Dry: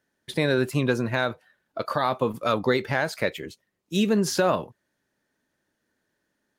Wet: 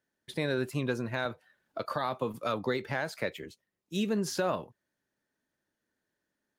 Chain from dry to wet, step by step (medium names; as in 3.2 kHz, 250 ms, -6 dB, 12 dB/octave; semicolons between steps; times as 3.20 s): 1.25–3.44 s: three bands compressed up and down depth 40%; trim -8 dB